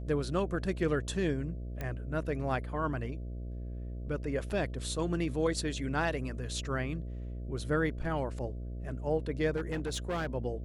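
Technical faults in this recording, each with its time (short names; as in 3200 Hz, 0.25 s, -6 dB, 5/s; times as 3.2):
buzz 60 Hz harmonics 11 -39 dBFS
1.81 pop -23 dBFS
4.5 gap 2 ms
9.56–10.34 clipped -29.5 dBFS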